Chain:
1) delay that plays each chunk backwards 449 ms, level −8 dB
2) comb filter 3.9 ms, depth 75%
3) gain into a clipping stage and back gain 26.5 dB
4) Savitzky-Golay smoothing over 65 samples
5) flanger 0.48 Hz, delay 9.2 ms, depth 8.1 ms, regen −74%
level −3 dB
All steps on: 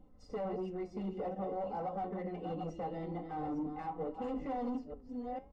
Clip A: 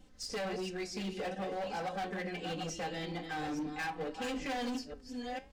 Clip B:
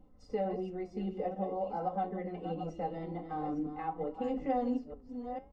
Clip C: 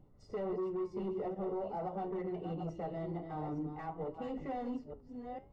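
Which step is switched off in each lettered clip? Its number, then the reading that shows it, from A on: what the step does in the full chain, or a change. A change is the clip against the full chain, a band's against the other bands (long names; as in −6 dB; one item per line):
4, 4 kHz band +20.0 dB
3, distortion level −9 dB
2, 1 kHz band −3.0 dB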